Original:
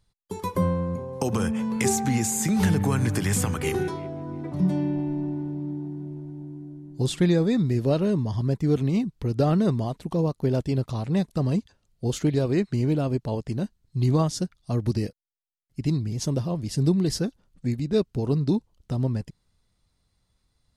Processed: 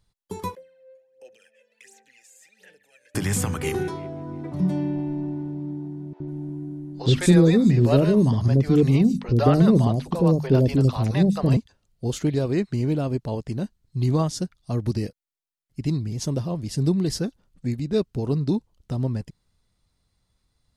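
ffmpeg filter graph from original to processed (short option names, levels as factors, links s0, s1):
-filter_complex "[0:a]asettb=1/sr,asplit=3[s0][s1][s2];[s0]atrim=end=0.554[s3];[s1]atrim=start=0.55:end=3.15,asetpts=PTS-STARTPTS,afade=t=in:d=0.004:c=qsin,afade=t=out:st=2.596:d=0.004:c=qsin,asplit=3[s4][s5][s6];[s4]bandpass=f=530:t=q:w=8,volume=1[s7];[s5]bandpass=f=1840:t=q:w=8,volume=0.501[s8];[s6]bandpass=f=2480:t=q:w=8,volume=0.355[s9];[s7][s8][s9]amix=inputs=3:normalize=0,aderivative,aphaser=in_gain=1:out_gain=1:delay=1.9:decay=0.69:speed=1.4:type=sinusoidal[s10];[s2]atrim=start=3.146[s11];[s3][s10]acrossfade=d=0.004:c1=hsin:c2=qsin[s12];[s12][s11]acrossfade=d=0.004:c1=qsin:c2=hsin,asettb=1/sr,asplit=3[s13][s14][s15];[s13]atrim=end=6.134[s16];[s14]atrim=start=6.13:end=11.57,asetpts=PTS-STARTPTS,afade=t=in:d=0.004:c=qsin,afade=t=out:st=5.436:d=0.004:c=qsin,bandreject=f=50:t=h:w=6,bandreject=f=100:t=h:w=6,bandreject=f=150:t=h:w=6,bandreject=f=200:t=h:w=6,bandreject=f=250:t=h:w=6,acontrast=79,acrossover=split=570|5200[s17][s18][s19];[s17]adelay=70[s20];[s19]adelay=150[s21];[s20][s18][s21]amix=inputs=3:normalize=0,atrim=end_sample=239904[s22];[s15]atrim=start=11.566[s23];[s16][s22]acrossfade=d=0.004:c1=hsin:c2=qsin[s24];[s24][s23]acrossfade=d=0.004:c1=qsin:c2=hsin"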